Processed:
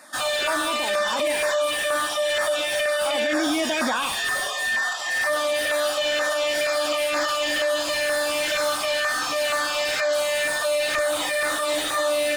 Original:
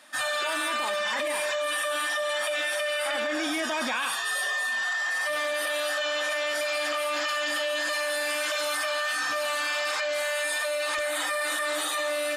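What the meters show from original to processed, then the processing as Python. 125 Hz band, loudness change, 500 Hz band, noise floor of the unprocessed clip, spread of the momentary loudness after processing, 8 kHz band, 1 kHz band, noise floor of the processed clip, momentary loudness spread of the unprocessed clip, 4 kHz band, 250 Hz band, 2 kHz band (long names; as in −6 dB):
can't be measured, +4.5 dB, +7.0 dB, −29 dBFS, 1 LU, +4.0 dB, +4.0 dB, −27 dBFS, 1 LU, +4.5 dB, +7.5 dB, +2.5 dB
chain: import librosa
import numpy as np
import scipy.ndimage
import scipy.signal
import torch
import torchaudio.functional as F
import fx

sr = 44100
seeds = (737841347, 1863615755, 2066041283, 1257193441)

y = fx.filter_lfo_notch(x, sr, shape='saw_down', hz=2.1, low_hz=940.0, high_hz=3300.0, q=1.1)
y = fx.slew_limit(y, sr, full_power_hz=100.0)
y = y * 10.0 ** (7.5 / 20.0)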